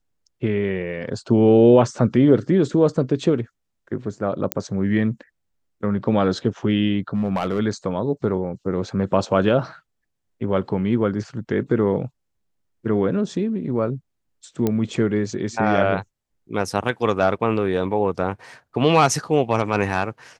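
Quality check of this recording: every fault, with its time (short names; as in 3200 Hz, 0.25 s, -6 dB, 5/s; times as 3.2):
4.52 pop -3 dBFS
7.14–7.6 clipped -17 dBFS
14.67 pop -9 dBFS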